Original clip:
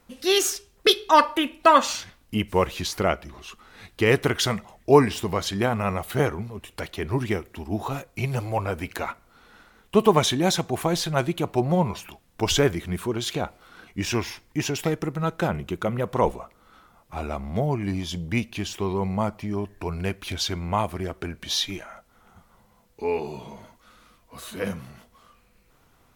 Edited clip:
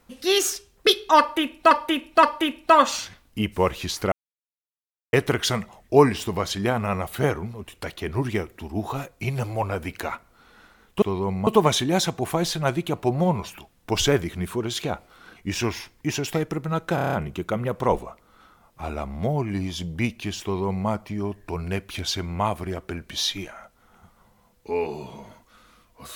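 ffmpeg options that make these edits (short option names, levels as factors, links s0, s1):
-filter_complex "[0:a]asplit=13[s0][s1][s2][s3][s4][s5][s6][s7][s8][s9][s10][s11][s12];[s0]atrim=end=1.712[s13];[s1]atrim=start=1.188:end=1.712[s14];[s2]atrim=start=1.188:end=3.08,asetpts=PTS-STARTPTS,afade=t=out:st=1.888:d=0.004:c=hsin[s15];[s3]atrim=start=3.08:end=4.09,asetpts=PTS-STARTPTS,volume=0[s16];[s4]atrim=start=4.09:end=9.982,asetpts=PTS-STARTPTS,afade=t=in:d=0.004:c=hsin[s17];[s5]atrim=start=18.758:end=19.212[s18];[s6]atrim=start=9.978:end=15.492[s19];[s7]atrim=start=15.458:end=15.492[s20];[s8]atrim=start=15.458:end=15.492[s21];[s9]atrim=start=15.458:end=15.492[s22];[s10]atrim=start=15.458:end=15.492[s23];[s11]atrim=start=15.458:end=15.492[s24];[s12]atrim=start=15.458[s25];[s13][s14]acrossfade=d=0.004:c1=hsin:c2=hsin[s26];[s15][s16][s17]concat=n=3:v=0:a=1[s27];[s26][s27]acrossfade=d=0.004:c1=hsin:c2=hsin[s28];[s28][s18]acrossfade=d=0.004:c1=hsin:c2=hsin[s29];[s29][s19]acrossfade=d=0.004:c1=hsin:c2=hsin[s30];[s30][s20]acrossfade=d=0.004:c1=hsin:c2=hsin[s31];[s31][s21]acrossfade=d=0.004:c1=hsin:c2=hsin[s32];[s32][s22]acrossfade=d=0.004:c1=hsin:c2=hsin[s33];[s33][s23]acrossfade=d=0.004:c1=hsin:c2=hsin[s34];[s34][s24]acrossfade=d=0.004:c1=hsin:c2=hsin[s35];[s35][s25]acrossfade=d=0.004:c1=hsin:c2=hsin"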